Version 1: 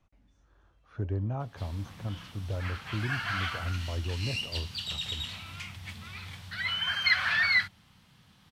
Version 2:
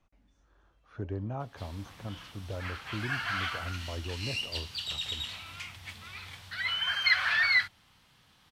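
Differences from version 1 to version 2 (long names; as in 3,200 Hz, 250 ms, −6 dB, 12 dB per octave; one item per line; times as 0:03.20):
background: add parametric band 190 Hz −8 dB 0.78 octaves
master: add parametric band 96 Hz −6 dB 1.4 octaves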